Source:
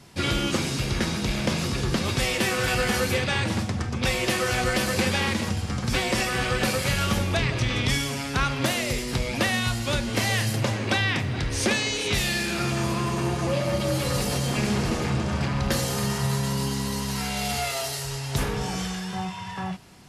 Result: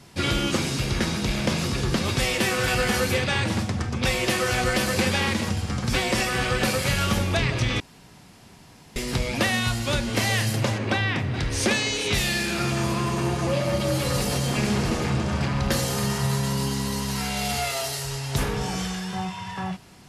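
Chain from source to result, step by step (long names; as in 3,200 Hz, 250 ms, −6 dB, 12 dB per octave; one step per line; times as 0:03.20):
0:07.80–0:08.96: fill with room tone
0:10.78–0:11.34: high-shelf EQ 3,600 Hz −9 dB
level +1 dB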